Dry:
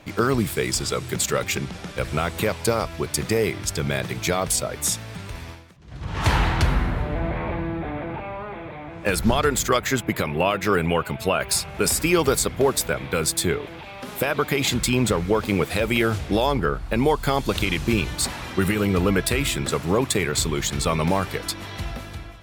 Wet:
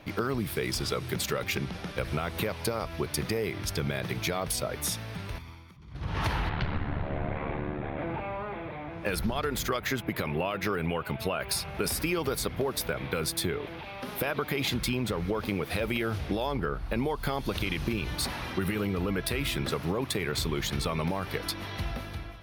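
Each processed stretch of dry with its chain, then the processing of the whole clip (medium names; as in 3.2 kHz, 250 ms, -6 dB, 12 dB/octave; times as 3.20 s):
5.38–5.95 s: band-stop 710 Hz, Q 9.9 + comb 0.9 ms, depth 54% + compression 2:1, threshold -45 dBFS
6.49–7.99 s: low-pass 4.1 kHz 24 dB/octave + doubling 32 ms -11 dB + ring modulator 36 Hz
whole clip: peaking EQ 7.5 kHz -13.5 dB 0.37 oct; peak limiter -11.5 dBFS; compression, threshold -23 dBFS; trim -2.5 dB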